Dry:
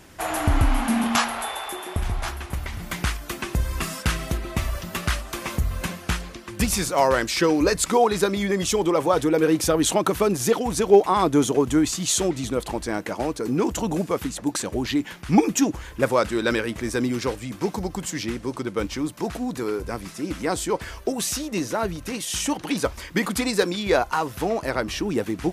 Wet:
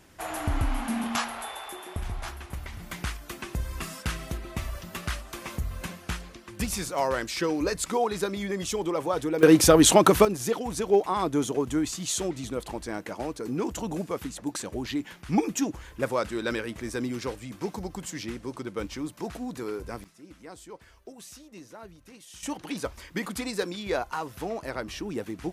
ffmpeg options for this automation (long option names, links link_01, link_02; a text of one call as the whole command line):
ffmpeg -i in.wav -af "asetnsamples=nb_out_samples=441:pad=0,asendcmd='9.43 volume volume 4dB;10.25 volume volume -7dB;20.04 volume volume -20dB;22.43 volume volume -8.5dB',volume=-7.5dB" out.wav